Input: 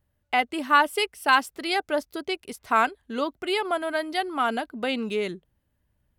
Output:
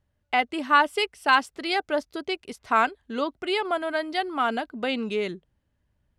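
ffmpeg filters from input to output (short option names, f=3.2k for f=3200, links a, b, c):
-af "lowpass=7.4k"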